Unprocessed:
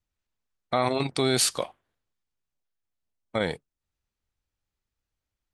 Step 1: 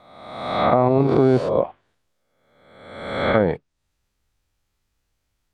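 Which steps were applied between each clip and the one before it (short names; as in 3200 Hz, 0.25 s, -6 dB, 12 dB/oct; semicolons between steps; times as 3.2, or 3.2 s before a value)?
spectral swells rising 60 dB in 1.10 s; treble ducked by the level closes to 750 Hz, closed at -20 dBFS; gain +9 dB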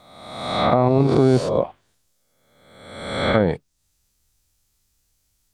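tone controls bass +4 dB, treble +15 dB; gain -1 dB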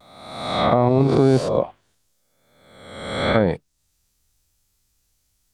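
vibrato 0.92 Hz 42 cents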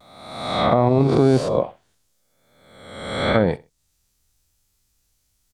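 feedback echo 64 ms, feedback 25%, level -20.5 dB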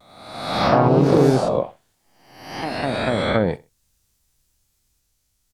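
echoes that change speed 87 ms, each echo +2 st, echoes 3; gain -1.5 dB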